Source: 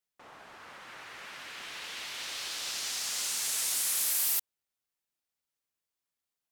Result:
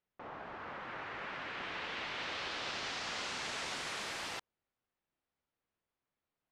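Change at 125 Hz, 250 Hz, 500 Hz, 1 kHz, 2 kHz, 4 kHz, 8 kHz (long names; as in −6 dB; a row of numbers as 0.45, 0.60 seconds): can't be measured, +8.0 dB, +7.0 dB, +5.0 dB, +1.5 dB, −5.5 dB, −18.0 dB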